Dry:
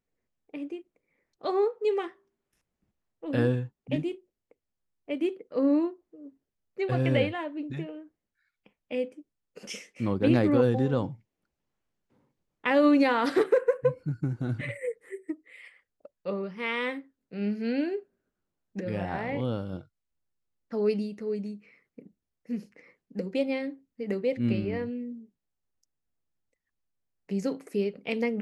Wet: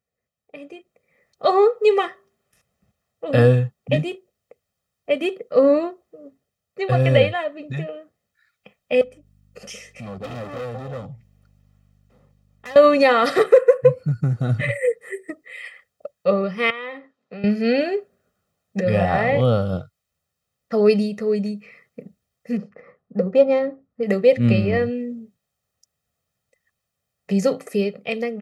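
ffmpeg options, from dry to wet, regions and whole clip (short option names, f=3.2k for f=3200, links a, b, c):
-filter_complex "[0:a]asettb=1/sr,asplit=3[a][b][c];[a]atrim=end=9.014[d];[b]atrim=start=9.01:end=12.76,asetpts=PTS-STARTPTS,afade=t=in:d=0.004:c=qsin,afade=t=out:st=3.746:d=0.004:c=qsin,volume=27.5dB,asoftclip=hard,volume=-27.5dB,acompressor=threshold=-55dB:ratio=2:attack=3.2:release=140:knee=1:detection=peak,aeval=exprs='val(0)+0.000501*(sin(2*PI*50*n/s)+sin(2*PI*2*50*n/s)/2+sin(2*PI*3*50*n/s)/3+sin(2*PI*4*50*n/s)/4+sin(2*PI*5*50*n/s)/5)':c=same[e];[c]atrim=start=12.756[f];[d][e]acrossfade=d=0.004:c1=hsin:c2=qsin[g];[g][f]acrossfade=d=0.004:c1=qsin:c2=hsin,asettb=1/sr,asplit=3[h][i][j];[h]atrim=end=16.704[k];[i]atrim=start=16.7:end=17.44,asetpts=PTS-STARTPTS,afade=t=in:d=0.004:c=qsin,afade=t=out:st=0.736:d=0.004:c=qsin,equalizer=f=970:t=o:w=0.44:g=8,acompressor=threshold=-41dB:ratio=5:attack=3.2:release=140:knee=1:detection=peak,highpass=200,lowpass=4.1k[l];[j]atrim=start=17.436[m];[k][l]acrossfade=d=0.004:c1=hsin:c2=qsin[n];[n][m]acrossfade=d=0.004:c1=qsin:c2=hsin,asettb=1/sr,asplit=3[o][p][q];[o]atrim=end=22.574[r];[p]atrim=start=22.57:end=24.03,asetpts=PTS-STARTPTS,afade=t=in:d=0.004:c=qsin,afade=t=out:st=1.456:d=0.004:c=qsin,highshelf=f=1.7k:t=q:w=1.5:g=-7.5,adynamicsmooth=sensitivity=6:basefreq=3.5k[s];[q]atrim=start=24.026[t];[r][s]acrossfade=d=0.004:c1=hsin:c2=qsin[u];[u][t]acrossfade=d=0.004:c1=qsin:c2=hsin,highpass=79,aecho=1:1:1.6:0.75,dynaudnorm=f=200:g=9:m=11.5dB"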